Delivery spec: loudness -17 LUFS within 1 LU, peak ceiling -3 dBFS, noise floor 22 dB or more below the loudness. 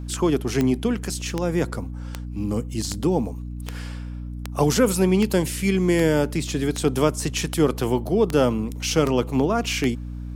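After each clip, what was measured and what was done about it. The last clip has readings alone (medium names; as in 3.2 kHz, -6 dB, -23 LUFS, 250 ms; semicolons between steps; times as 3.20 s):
clicks found 13; hum 60 Hz; highest harmonic 300 Hz; hum level -29 dBFS; loudness -22.5 LUFS; peak level -6.5 dBFS; loudness target -17.0 LUFS
-> de-click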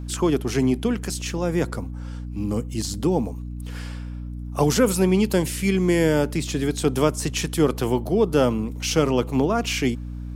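clicks found 0; hum 60 Hz; highest harmonic 300 Hz; hum level -29 dBFS
-> de-hum 60 Hz, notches 5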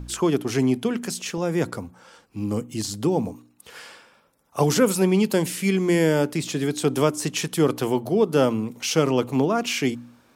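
hum not found; loudness -23.0 LUFS; peak level -7.0 dBFS; loudness target -17.0 LUFS
-> trim +6 dB; peak limiter -3 dBFS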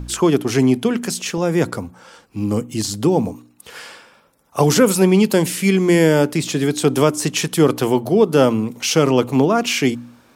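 loudness -17.0 LUFS; peak level -3.0 dBFS; noise floor -54 dBFS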